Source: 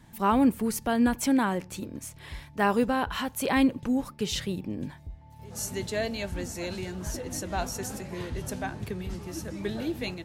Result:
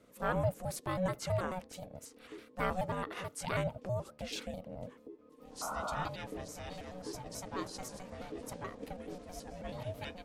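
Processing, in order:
pitch shifter gated in a rhythm −4 semitones, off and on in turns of 108 ms
ring modulation 370 Hz
sound drawn into the spectrogram noise, 0:05.61–0:06.09, 590–1,500 Hz −33 dBFS
level −6.5 dB

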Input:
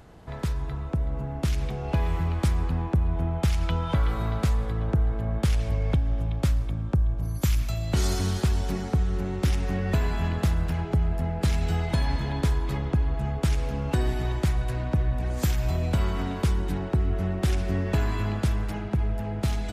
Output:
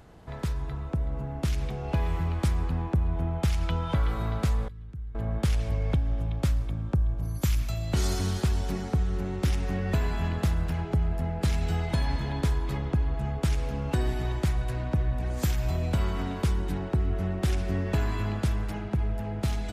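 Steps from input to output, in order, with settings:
0:04.68–0:05.15: guitar amp tone stack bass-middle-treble 6-0-2
level −2 dB

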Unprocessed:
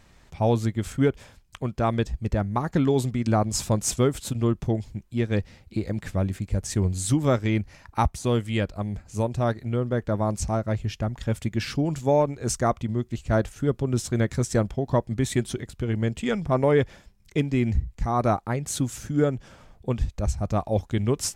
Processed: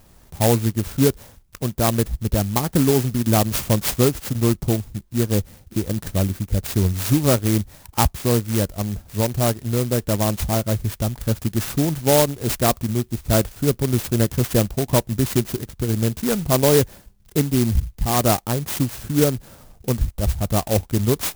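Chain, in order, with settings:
converter with an unsteady clock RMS 0.13 ms
level +4.5 dB

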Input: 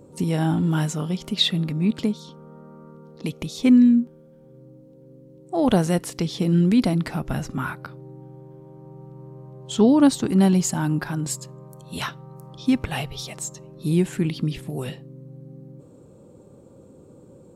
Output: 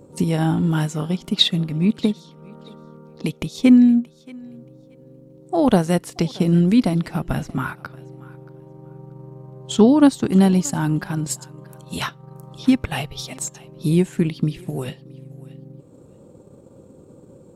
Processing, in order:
transient designer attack +3 dB, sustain −6 dB
feedback echo with a high-pass in the loop 628 ms, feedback 18%, level −21 dB
level +2 dB

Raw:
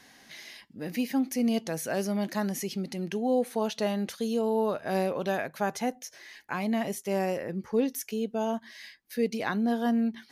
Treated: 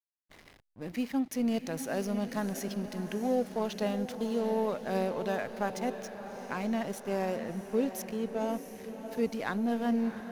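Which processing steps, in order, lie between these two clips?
slack as between gear wheels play −36 dBFS
feedback delay with all-pass diffusion 676 ms, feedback 56%, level −10 dB
level −3 dB

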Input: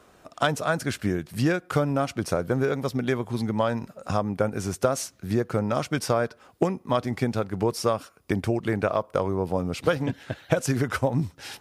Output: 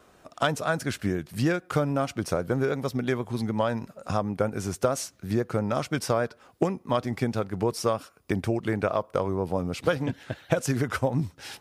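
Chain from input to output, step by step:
pitch vibrato 6.3 Hz 34 cents
level −1.5 dB

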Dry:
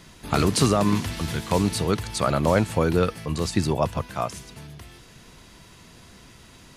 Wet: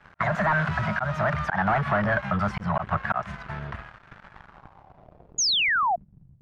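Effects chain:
gliding playback speed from 161% → 50%
Chebyshev band-stop filter 210–590 Hz, order 5
low-shelf EQ 350 Hz −2.5 dB
volume swells 226 ms
leveller curve on the samples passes 5
downward compressor, threshold −16 dBFS, peak gain reduction 5 dB
low-pass filter sweep 1,500 Hz → 130 Hz, 0:04.37–0:06.37
sound drawn into the spectrogram fall, 0:05.38–0:05.96, 660–7,000 Hz −15 dBFS
level −7.5 dB

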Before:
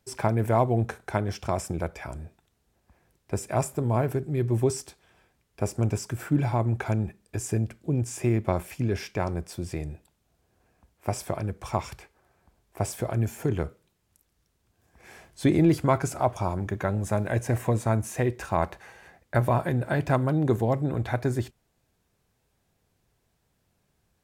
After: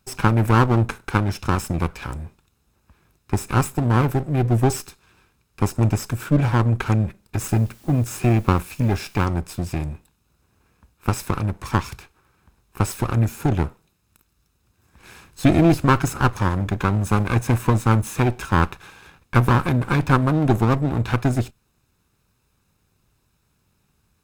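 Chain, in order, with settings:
lower of the sound and its delayed copy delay 0.78 ms
0:07.48–0:09.26: bit-depth reduction 10 bits, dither triangular
level +6.5 dB

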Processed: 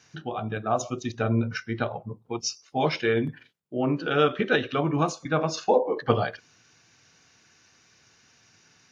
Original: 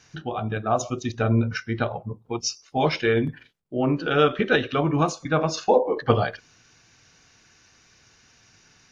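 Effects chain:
high-pass filter 97 Hz
level −2.5 dB

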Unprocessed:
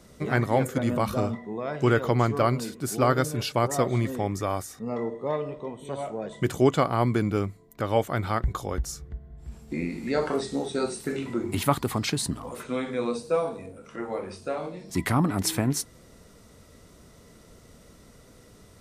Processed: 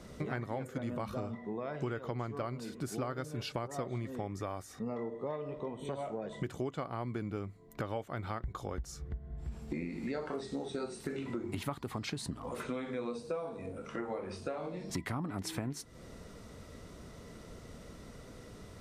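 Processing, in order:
high-shelf EQ 7,000 Hz −10.5 dB
downward compressor 6 to 1, threshold −38 dBFS, peak gain reduction 21.5 dB
level +2.5 dB

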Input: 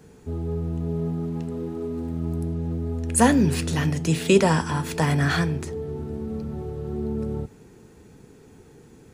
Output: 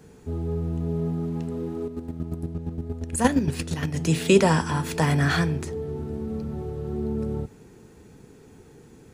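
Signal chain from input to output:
0:01.85–0:03.94: square-wave tremolo 8.6 Hz, depth 60%, duty 25%

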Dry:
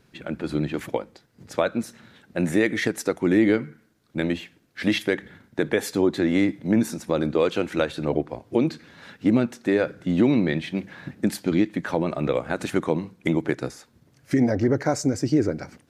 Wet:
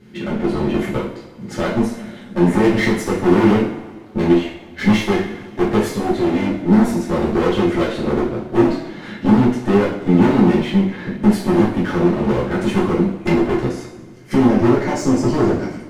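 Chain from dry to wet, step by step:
high-shelf EQ 4,900 Hz −6.5 dB
in parallel at −0.5 dB: downward compressor, threshold −34 dBFS, peak gain reduction 18.5 dB
0:05.87–0:06.51: on the sum: tube saturation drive 21 dB, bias 0.55
hollow resonant body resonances 220/350/2,100/3,100 Hz, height 10 dB, ringing for 40 ms
asymmetric clip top −27.5 dBFS, bottom −9.5 dBFS
coupled-rooms reverb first 0.49 s, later 1.8 s, from −16 dB, DRR −7 dB
level −3.5 dB

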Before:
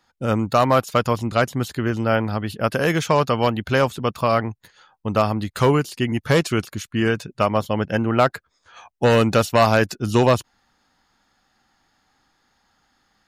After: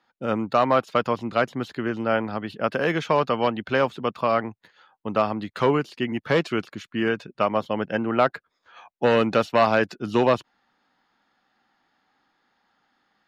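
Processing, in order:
three-way crossover with the lows and the highs turned down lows −16 dB, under 160 Hz, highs −19 dB, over 4,400 Hz
level −2.5 dB

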